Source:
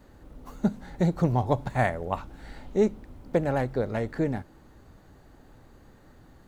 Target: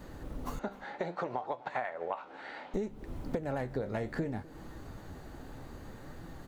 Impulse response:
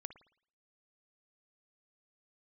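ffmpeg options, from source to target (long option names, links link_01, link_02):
-filter_complex "[0:a]flanger=delay=5.9:depth=9.3:regen=65:speed=0.64:shape=sinusoidal,alimiter=limit=-20.5dB:level=0:latency=1:release=208,asettb=1/sr,asplit=3[link_01][link_02][link_03];[link_01]atrim=end=0.594[link_04];[link_02]atrim=start=0.59:end=2.74,asetpts=PTS-STARTPTS,afade=type=in:duration=0.004:curve=qsin,afade=type=out:start_time=2.146:duration=0.004:curve=qsin,highpass=580,lowpass=3000[link_05];[link_03]atrim=start=2.736[link_06];[link_04][link_05]acrossfade=duration=0.004:curve1=hsin:curve2=qsin[link_07];[link_07][link_06]acrossfade=duration=0.004:curve1=qsin:curve2=hsin,acompressor=threshold=-42dB:ratio=16,aecho=1:1:253:0.0841,volume=11dB"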